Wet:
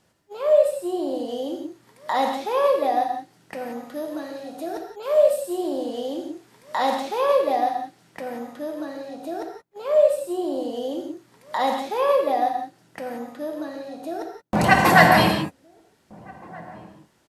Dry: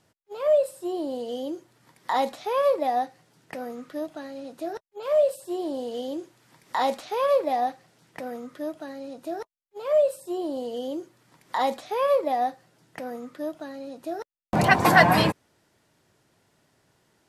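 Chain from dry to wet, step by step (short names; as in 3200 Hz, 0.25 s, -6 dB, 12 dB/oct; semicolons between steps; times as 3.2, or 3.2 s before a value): 3.86–5.68 high shelf 9500 Hz +7.5 dB; outdoor echo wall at 270 m, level -23 dB; non-linear reverb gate 0.2 s flat, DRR 2 dB; gain +1 dB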